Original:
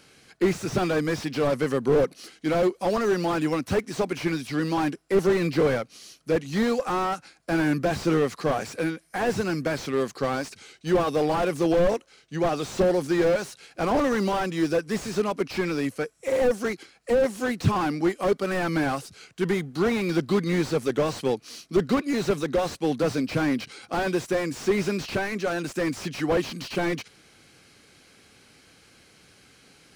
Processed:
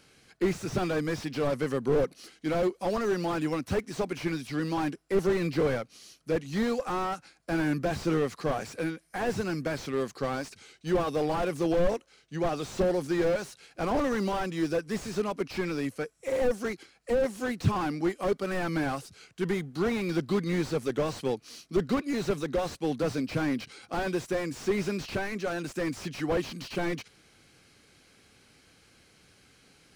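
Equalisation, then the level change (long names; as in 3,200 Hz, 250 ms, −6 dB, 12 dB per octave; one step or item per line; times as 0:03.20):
low-shelf EQ 84 Hz +6 dB
−5.0 dB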